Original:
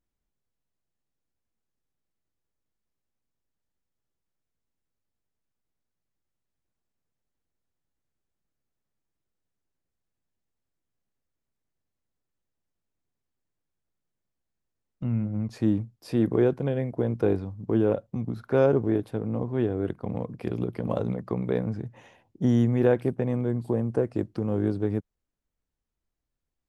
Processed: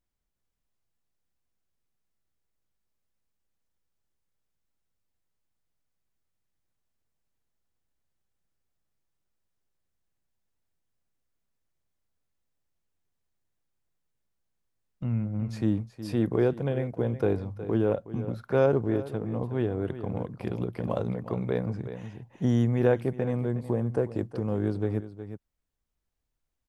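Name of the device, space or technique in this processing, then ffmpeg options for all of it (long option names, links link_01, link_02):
ducked delay: -filter_complex "[0:a]equalizer=frequency=280:width_type=o:width=1.4:gain=-3.5,asplit=3[link_01][link_02][link_03];[link_02]adelay=366,volume=-3dB[link_04];[link_03]apad=whole_len=1193108[link_05];[link_04][link_05]sidechaincompress=threshold=-33dB:ratio=16:attack=46:release=1260[link_06];[link_01][link_06]amix=inputs=2:normalize=0"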